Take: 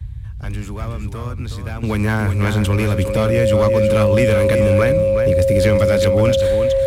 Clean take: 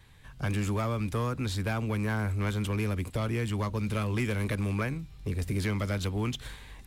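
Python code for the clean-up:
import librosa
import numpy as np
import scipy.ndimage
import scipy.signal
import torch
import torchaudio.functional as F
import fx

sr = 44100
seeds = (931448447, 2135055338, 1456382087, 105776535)

y = fx.notch(x, sr, hz=540.0, q=30.0)
y = fx.noise_reduce(y, sr, print_start_s=0.0, print_end_s=0.5, reduce_db=20.0)
y = fx.fix_echo_inverse(y, sr, delay_ms=369, level_db=-8.0)
y = fx.fix_level(y, sr, at_s=1.83, step_db=-11.5)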